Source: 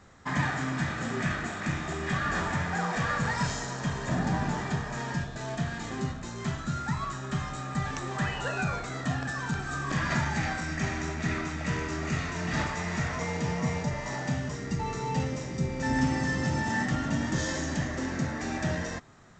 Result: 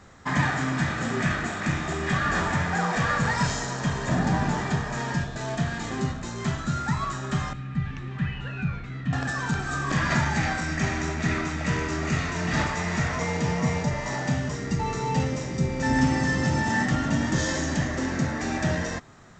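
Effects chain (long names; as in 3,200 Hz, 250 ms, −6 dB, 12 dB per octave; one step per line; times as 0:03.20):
0:07.53–0:09.13: drawn EQ curve 180 Hz 0 dB, 650 Hz −19 dB, 2,600 Hz −5 dB, 8,700 Hz −29 dB
level +4.5 dB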